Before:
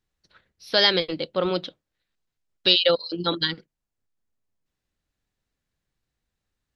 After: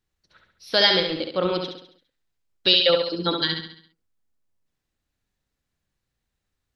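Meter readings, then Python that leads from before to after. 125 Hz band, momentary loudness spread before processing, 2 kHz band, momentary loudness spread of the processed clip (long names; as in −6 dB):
+1.0 dB, 11 LU, +1.5 dB, 11 LU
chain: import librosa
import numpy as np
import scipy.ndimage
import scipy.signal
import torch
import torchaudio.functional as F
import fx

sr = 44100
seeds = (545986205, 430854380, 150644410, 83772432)

y = fx.echo_feedback(x, sr, ms=68, feedback_pct=47, wet_db=-5.5)
y = fx.end_taper(y, sr, db_per_s=290.0)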